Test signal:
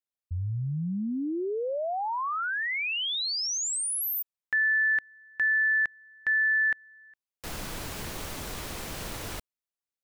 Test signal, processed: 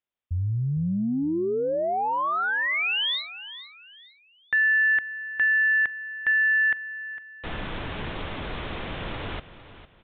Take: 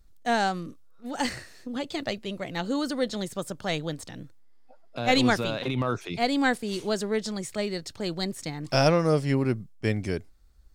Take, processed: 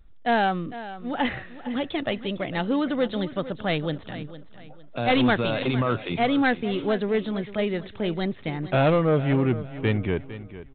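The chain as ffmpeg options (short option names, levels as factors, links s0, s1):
-af "aresample=8000,asoftclip=type=tanh:threshold=0.106,aresample=44100,aecho=1:1:455|910|1365:0.188|0.0603|0.0193,volume=1.78"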